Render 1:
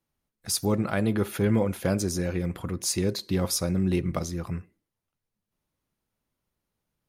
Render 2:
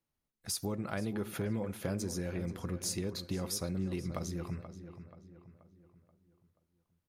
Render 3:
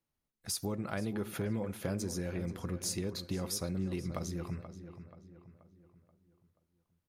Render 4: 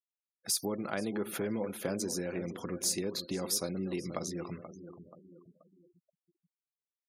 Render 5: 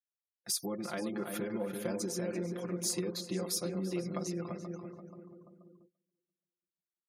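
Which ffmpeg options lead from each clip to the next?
-filter_complex "[0:a]acompressor=threshold=0.0501:ratio=6,asplit=2[s0][s1];[s1]adelay=481,lowpass=f=2900:p=1,volume=0.282,asplit=2[s2][s3];[s3]adelay=481,lowpass=f=2900:p=1,volume=0.46,asplit=2[s4][s5];[s5]adelay=481,lowpass=f=2900:p=1,volume=0.46,asplit=2[s6][s7];[s7]adelay=481,lowpass=f=2900:p=1,volume=0.46,asplit=2[s8][s9];[s9]adelay=481,lowpass=f=2900:p=1,volume=0.46[s10];[s2][s4][s6][s8][s10]amix=inputs=5:normalize=0[s11];[s0][s11]amix=inputs=2:normalize=0,volume=0.501"
-af anull
-af "highpass=260,afftfilt=real='re*gte(hypot(re,im),0.00224)':imag='im*gte(hypot(re,im),0.00224)':win_size=1024:overlap=0.75,equalizer=f=1300:w=0.35:g=-3.5,volume=2"
-filter_complex "[0:a]asplit=2[s0][s1];[s1]adelay=340,lowpass=f=1600:p=1,volume=0.631,asplit=2[s2][s3];[s3]adelay=340,lowpass=f=1600:p=1,volume=0.28,asplit=2[s4][s5];[s5]adelay=340,lowpass=f=1600:p=1,volume=0.28,asplit=2[s6][s7];[s7]adelay=340,lowpass=f=1600:p=1,volume=0.28[s8];[s2][s4][s6][s8]amix=inputs=4:normalize=0[s9];[s0][s9]amix=inputs=2:normalize=0,agate=range=0.0891:threshold=0.00112:ratio=16:detection=peak,aecho=1:1:5.7:0.81,volume=0.562"

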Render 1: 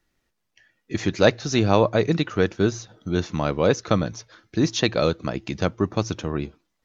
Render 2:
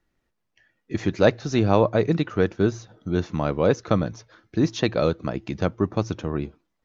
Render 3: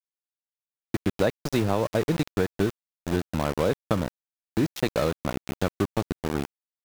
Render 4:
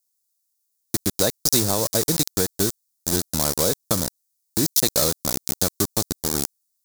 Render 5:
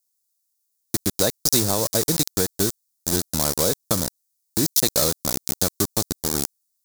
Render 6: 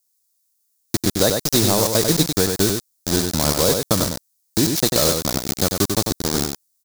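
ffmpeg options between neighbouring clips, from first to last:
-af "highshelf=f=2500:g=-9"
-af "aeval=exprs='val(0)*gte(abs(val(0)),0.0596)':c=same,acompressor=threshold=0.112:ratio=6"
-af "aexciter=amount=9.5:drive=6.2:freq=4100"
-af anull
-filter_complex "[0:a]acrossover=split=990[s0][s1];[s1]asoftclip=type=hard:threshold=0.112[s2];[s0][s2]amix=inputs=2:normalize=0,aecho=1:1:95:0.562,volume=1.68"

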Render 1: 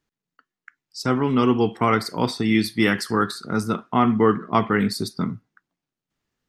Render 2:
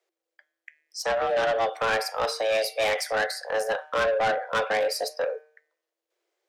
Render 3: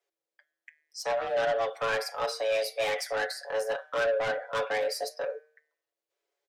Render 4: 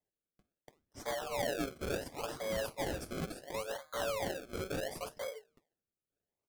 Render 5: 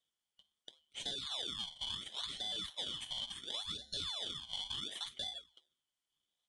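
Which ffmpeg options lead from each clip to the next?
-af "afreqshift=330,bandreject=f=152.7:t=h:w=4,bandreject=f=305.4:t=h:w=4,bandreject=f=458.1:t=h:w=4,bandreject=f=610.8:t=h:w=4,bandreject=f=763.5:t=h:w=4,bandreject=f=916.2:t=h:w=4,bandreject=f=1068.9:t=h:w=4,bandreject=f=1221.6:t=h:w=4,bandreject=f=1374.3:t=h:w=4,bandreject=f=1527:t=h:w=4,bandreject=f=1679.7:t=h:w=4,bandreject=f=1832.4:t=h:w=4,bandreject=f=1985.1:t=h:w=4,bandreject=f=2137.8:t=h:w=4,bandreject=f=2290.5:t=h:w=4,bandreject=f=2443.2:t=h:w=4,bandreject=f=2595.9:t=h:w=4,bandreject=f=2748.6:t=h:w=4,bandreject=f=2901.3:t=h:w=4,bandreject=f=3054:t=h:w=4,bandreject=f=3206.7:t=h:w=4,bandreject=f=3359.4:t=h:w=4,bandreject=f=3512.1:t=h:w=4,asoftclip=type=tanh:threshold=0.1"
-af "aecho=1:1:7.1:0.7,volume=0.473"
-filter_complex "[0:a]equalizer=f=3200:t=o:w=0.98:g=5,flanger=delay=2.9:depth=5.2:regen=73:speed=0.62:shape=sinusoidal,acrossover=split=320|6400[s0][s1][s2];[s1]acrusher=samples=32:mix=1:aa=0.000001:lfo=1:lforange=32:lforate=0.71[s3];[s0][s3][s2]amix=inputs=3:normalize=0,volume=0.631"
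-af "afftfilt=real='real(if(lt(b,272),68*(eq(floor(b/68),0)*1+eq(floor(b/68),1)*3+eq(floor(b/68),2)*0+eq(floor(b/68),3)*2)+mod(b,68),b),0)':imag='imag(if(lt(b,272),68*(eq(floor(b/68),0)*1+eq(floor(b/68),1)*3+eq(floor(b/68),2)*0+eq(floor(b/68),3)*2)+mod(b,68),b),0)':win_size=2048:overlap=0.75,acompressor=threshold=0.00708:ratio=6,aresample=22050,aresample=44100,volume=1.68"

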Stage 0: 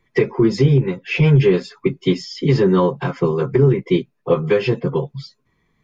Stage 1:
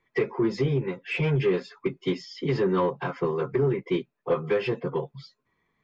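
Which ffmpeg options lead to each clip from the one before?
-filter_complex "[0:a]asplit=2[s0][s1];[s1]highpass=f=720:p=1,volume=3.98,asoftclip=type=tanh:threshold=0.596[s2];[s0][s2]amix=inputs=2:normalize=0,lowpass=f=1800:p=1,volume=0.501,volume=0.355"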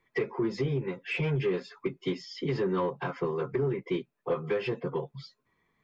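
-af "acompressor=threshold=0.02:ratio=1.5"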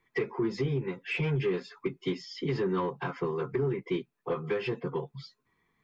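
-af "equalizer=f=580:t=o:w=0.28:g=-8.5"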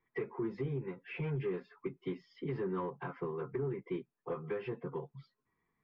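-af "lowpass=2000,volume=0.447"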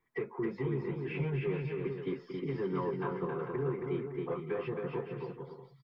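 -af "aecho=1:1:270|445.5|559.6|633.7|681.9:0.631|0.398|0.251|0.158|0.1,volume=1.19"

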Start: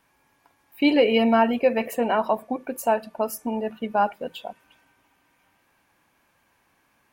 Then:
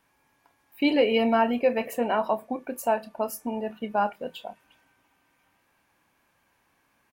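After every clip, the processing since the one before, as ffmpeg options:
-filter_complex "[0:a]asplit=2[s0][s1];[s1]adelay=29,volume=0.224[s2];[s0][s2]amix=inputs=2:normalize=0,volume=0.708"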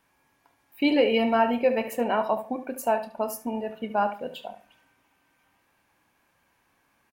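-filter_complex "[0:a]asplit=2[s0][s1];[s1]adelay=72,lowpass=f=4200:p=1,volume=0.282,asplit=2[s2][s3];[s3]adelay=72,lowpass=f=4200:p=1,volume=0.25,asplit=2[s4][s5];[s5]adelay=72,lowpass=f=4200:p=1,volume=0.25[s6];[s0][s2][s4][s6]amix=inputs=4:normalize=0"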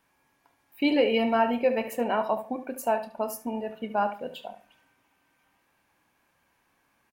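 -af "bandreject=f=50:t=h:w=6,bandreject=f=100:t=h:w=6,volume=0.841"

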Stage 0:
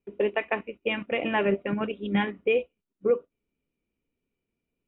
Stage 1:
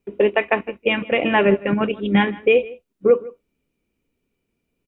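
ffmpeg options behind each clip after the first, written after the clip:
-filter_complex "[0:a]asplit=2[s0][s1];[s1]adelay=157.4,volume=0.1,highshelf=f=4000:g=-3.54[s2];[s0][s2]amix=inputs=2:normalize=0,volume=2.66"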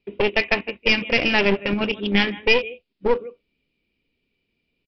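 -af "highshelf=f=1900:t=q:w=1.5:g=8,aresample=11025,aeval=exprs='clip(val(0),-1,0.075)':c=same,aresample=44100,volume=0.841"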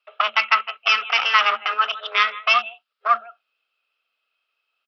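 -af "afreqshift=220,highpass=f=1300:t=q:w=13,volume=0.841"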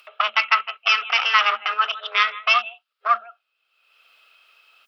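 -af "acompressor=mode=upward:threshold=0.0126:ratio=2.5,lowshelf=f=320:g=-11"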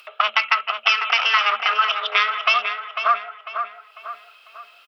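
-filter_complex "[0:a]acompressor=threshold=0.112:ratio=6,asplit=2[s0][s1];[s1]adelay=498,lowpass=f=2900:p=1,volume=0.447,asplit=2[s2][s3];[s3]adelay=498,lowpass=f=2900:p=1,volume=0.46,asplit=2[s4][s5];[s5]adelay=498,lowpass=f=2900:p=1,volume=0.46,asplit=2[s6][s7];[s7]adelay=498,lowpass=f=2900:p=1,volume=0.46,asplit=2[s8][s9];[s9]adelay=498,lowpass=f=2900:p=1,volume=0.46[s10];[s2][s4][s6][s8][s10]amix=inputs=5:normalize=0[s11];[s0][s11]amix=inputs=2:normalize=0,volume=1.78"

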